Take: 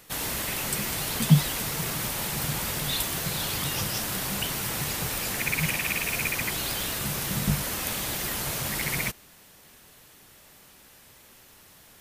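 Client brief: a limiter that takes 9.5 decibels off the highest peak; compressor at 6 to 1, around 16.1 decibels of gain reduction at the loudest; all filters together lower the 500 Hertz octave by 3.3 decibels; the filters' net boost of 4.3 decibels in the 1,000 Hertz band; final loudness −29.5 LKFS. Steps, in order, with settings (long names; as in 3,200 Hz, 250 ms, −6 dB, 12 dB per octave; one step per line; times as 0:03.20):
parametric band 500 Hz −6.5 dB
parametric band 1,000 Hz +7 dB
downward compressor 6 to 1, threshold −30 dBFS
level +3.5 dB
brickwall limiter −21 dBFS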